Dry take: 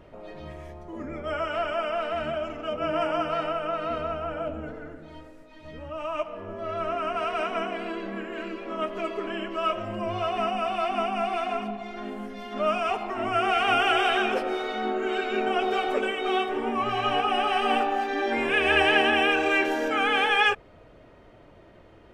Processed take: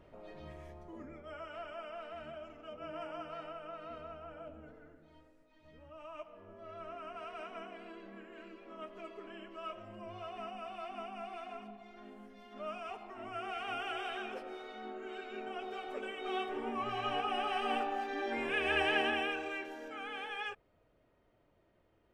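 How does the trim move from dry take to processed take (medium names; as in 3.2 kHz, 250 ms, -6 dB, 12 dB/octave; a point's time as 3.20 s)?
0.85 s -9 dB
1.26 s -17 dB
15.82 s -17 dB
16.46 s -10.5 dB
19.07 s -10.5 dB
19.67 s -19.5 dB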